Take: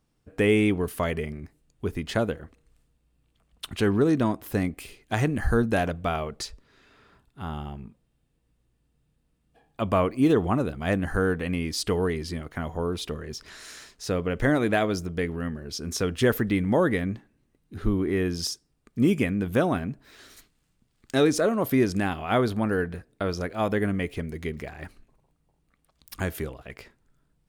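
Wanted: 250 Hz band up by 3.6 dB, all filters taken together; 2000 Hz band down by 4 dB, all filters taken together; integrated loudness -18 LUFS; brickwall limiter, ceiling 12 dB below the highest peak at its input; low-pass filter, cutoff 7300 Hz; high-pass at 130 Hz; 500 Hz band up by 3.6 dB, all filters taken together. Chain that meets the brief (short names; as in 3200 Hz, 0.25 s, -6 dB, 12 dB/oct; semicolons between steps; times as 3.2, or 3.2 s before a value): HPF 130 Hz; LPF 7300 Hz; bell 250 Hz +4 dB; bell 500 Hz +3.5 dB; bell 2000 Hz -5.5 dB; gain +11.5 dB; limiter -6.5 dBFS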